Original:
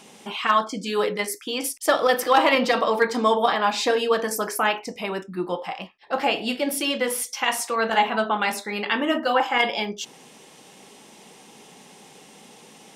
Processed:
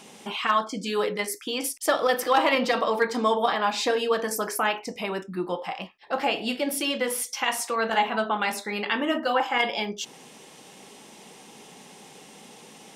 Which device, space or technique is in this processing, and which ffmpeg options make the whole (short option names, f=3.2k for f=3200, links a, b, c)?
parallel compression: -filter_complex "[0:a]asplit=2[a][b];[b]acompressor=threshold=-30dB:ratio=6,volume=-2.5dB[c];[a][c]amix=inputs=2:normalize=0,volume=-4.5dB"